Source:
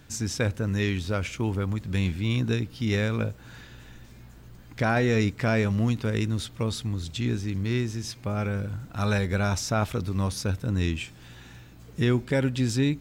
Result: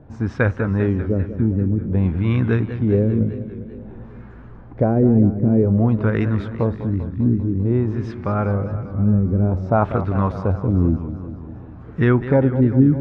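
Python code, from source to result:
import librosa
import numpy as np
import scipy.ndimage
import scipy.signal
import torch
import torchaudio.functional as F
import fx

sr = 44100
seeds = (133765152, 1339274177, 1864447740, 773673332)

y = fx.filter_lfo_lowpass(x, sr, shape='sine', hz=0.52, low_hz=240.0, high_hz=1500.0, q=1.7)
y = fx.echo_warbled(y, sr, ms=198, feedback_pct=65, rate_hz=2.8, cents=155, wet_db=-12)
y = F.gain(torch.from_numpy(y), 7.0).numpy()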